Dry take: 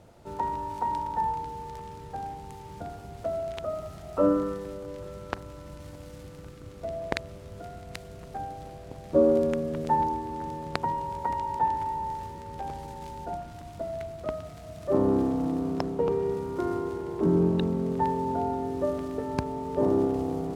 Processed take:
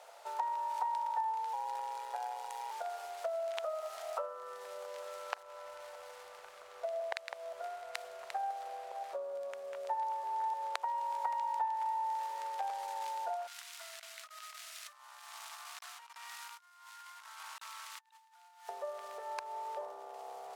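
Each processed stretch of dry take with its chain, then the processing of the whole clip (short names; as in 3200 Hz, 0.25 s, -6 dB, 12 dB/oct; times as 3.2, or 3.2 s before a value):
1.53–2.71 comb 2.1 ms, depth 90% + ring modulator 62 Hz + short-mantissa float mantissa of 6-bit
5.42–10.75 reverse delay 0.301 s, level -8 dB + mismatched tape noise reduction decoder only
13.47–18.69 reverse delay 0.313 s, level -8 dB + Bessel high-pass 2000 Hz, order 6 + negative-ratio compressor -57 dBFS, ratio -0.5
whole clip: compressor 6:1, threshold -38 dBFS; inverse Chebyshev high-pass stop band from 310 Hz, stop band 40 dB; gain +5.5 dB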